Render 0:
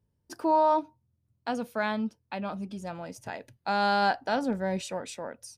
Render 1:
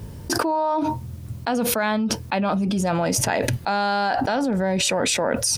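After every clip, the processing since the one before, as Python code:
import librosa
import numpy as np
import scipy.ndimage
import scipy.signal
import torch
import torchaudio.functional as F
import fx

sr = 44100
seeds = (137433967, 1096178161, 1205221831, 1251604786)

y = fx.env_flatten(x, sr, amount_pct=100)
y = y * 10.0 ** (-1.0 / 20.0)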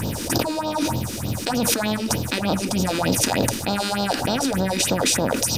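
y = fx.bin_compress(x, sr, power=0.4)
y = fx.phaser_stages(y, sr, stages=4, low_hz=110.0, high_hz=2000.0, hz=3.3, feedback_pct=35)
y = y * 10.0 ** (-2.5 / 20.0)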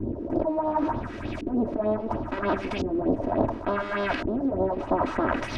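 y = fx.lower_of_two(x, sr, delay_ms=3.1)
y = fx.filter_lfo_lowpass(y, sr, shape='saw_up', hz=0.71, low_hz=340.0, high_hz=2500.0, q=1.7)
y = y * 10.0 ** (-3.0 / 20.0)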